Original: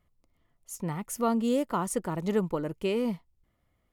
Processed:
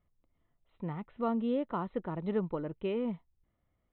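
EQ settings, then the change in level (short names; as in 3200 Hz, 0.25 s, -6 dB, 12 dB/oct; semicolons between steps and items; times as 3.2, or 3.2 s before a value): brick-wall FIR low-pass 4100 Hz; high shelf 2400 Hz -8.5 dB; -4.5 dB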